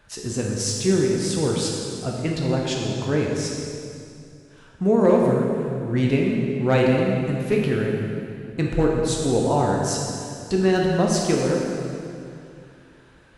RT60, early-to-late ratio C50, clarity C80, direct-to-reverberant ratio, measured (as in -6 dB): 2.6 s, 0.5 dB, 2.0 dB, -1.5 dB